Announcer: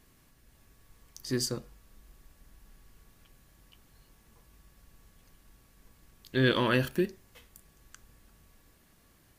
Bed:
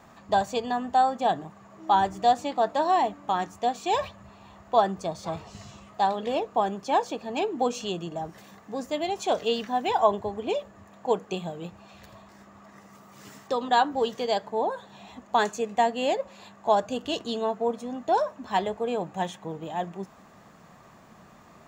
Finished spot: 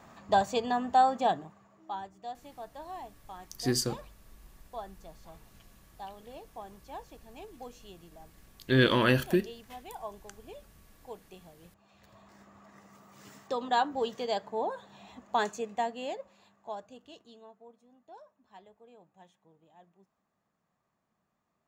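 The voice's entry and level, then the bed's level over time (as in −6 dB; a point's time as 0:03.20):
2.35 s, +2.0 dB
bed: 0:01.21 −1.5 dB
0:02.10 −20 dB
0:11.59 −20 dB
0:12.31 −5.5 dB
0:15.50 −5.5 dB
0:17.73 −28 dB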